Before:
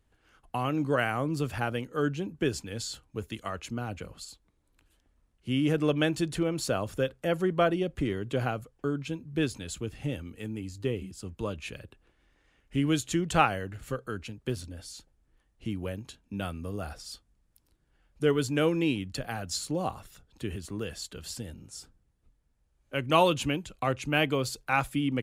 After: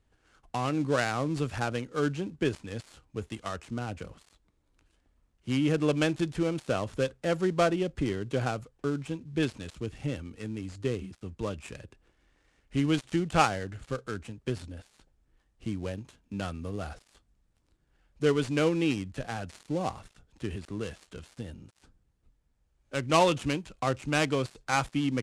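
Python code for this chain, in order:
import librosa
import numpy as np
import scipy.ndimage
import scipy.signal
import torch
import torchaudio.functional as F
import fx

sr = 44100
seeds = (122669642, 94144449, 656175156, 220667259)

y = fx.dead_time(x, sr, dead_ms=0.11)
y = scipy.signal.sosfilt(scipy.signal.butter(4, 9600.0, 'lowpass', fs=sr, output='sos'), y)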